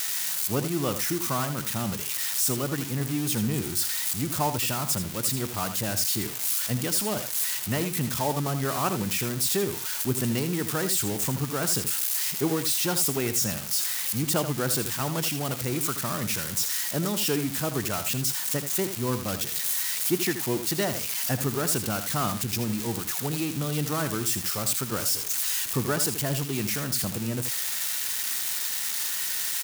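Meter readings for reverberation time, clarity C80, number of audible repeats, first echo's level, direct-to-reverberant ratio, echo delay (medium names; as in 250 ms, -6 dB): no reverb, no reverb, 1, -10.0 dB, no reverb, 80 ms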